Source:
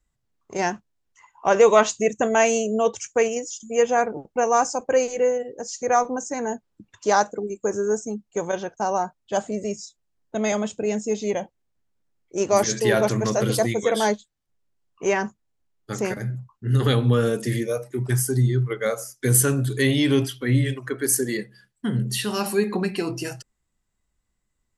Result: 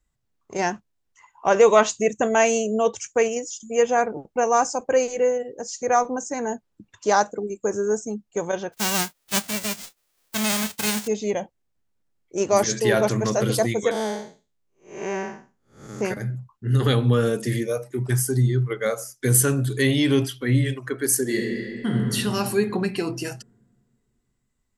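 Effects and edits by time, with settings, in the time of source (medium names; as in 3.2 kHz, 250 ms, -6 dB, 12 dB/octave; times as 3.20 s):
8.72–11.06 s: formants flattened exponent 0.1
13.91–16.01 s: spectral blur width 241 ms
21.22–21.97 s: reverb throw, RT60 2.6 s, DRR -1.5 dB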